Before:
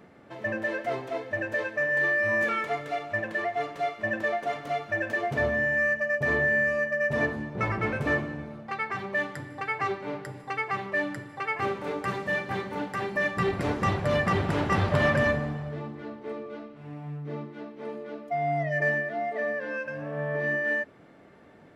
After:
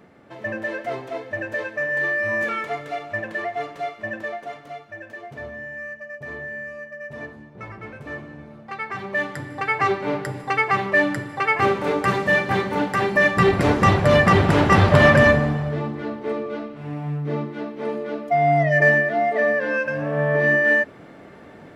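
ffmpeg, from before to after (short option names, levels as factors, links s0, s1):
-af "volume=11.2,afade=t=out:st=3.57:d=1.35:silence=0.281838,afade=t=in:st=8.07:d=0.88:silence=0.281838,afade=t=in:st=8.95:d=1.18:silence=0.398107"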